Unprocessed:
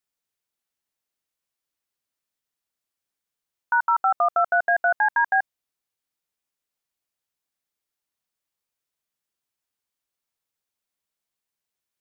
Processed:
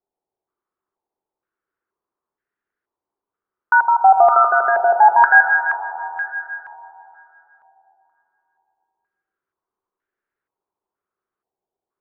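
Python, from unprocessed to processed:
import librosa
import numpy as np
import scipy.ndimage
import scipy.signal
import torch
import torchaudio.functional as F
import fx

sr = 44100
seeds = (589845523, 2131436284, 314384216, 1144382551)

y = fx.peak_eq(x, sr, hz=380.0, db=13.5, octaves=0.56)
y = fx.rev_schroeder(y, sr, rt60_s=3.5, comb_ms=32, drr_db=4.5)
y = fx.filter_held_lowpass(y, sr, hz=2.1, low_hz=790.0, high_hz=1600.0)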